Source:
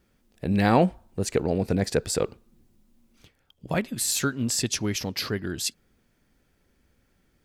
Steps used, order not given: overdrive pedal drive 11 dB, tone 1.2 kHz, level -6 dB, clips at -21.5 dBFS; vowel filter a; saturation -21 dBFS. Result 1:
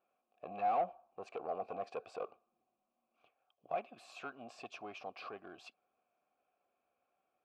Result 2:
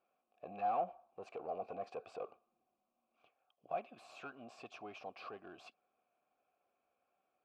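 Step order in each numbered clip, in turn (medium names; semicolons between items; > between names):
saturation > vowel filter > overdrive pedal; saturation > overdrive pedal > vowel filter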